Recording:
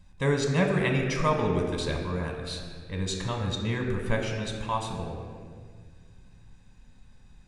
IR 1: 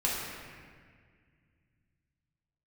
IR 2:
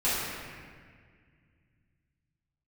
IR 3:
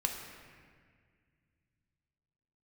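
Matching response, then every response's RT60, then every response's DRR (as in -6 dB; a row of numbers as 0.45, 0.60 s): 3; 1.8, 1.8, 1.8 s; -6.0, -13.0, 1.5 dB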